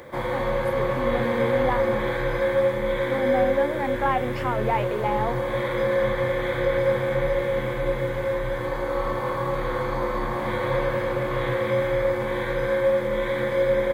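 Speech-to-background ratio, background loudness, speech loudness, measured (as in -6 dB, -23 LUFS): -3.5 dB, -25.0 LUFS, -28.5 LUFS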